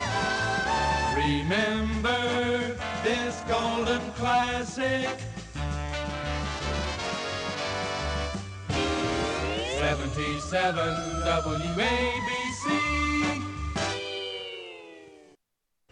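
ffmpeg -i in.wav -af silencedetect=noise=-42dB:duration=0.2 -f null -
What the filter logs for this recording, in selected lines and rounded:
silence_start: 15.22
silence_end: 15.92 | silence_duration: 0.70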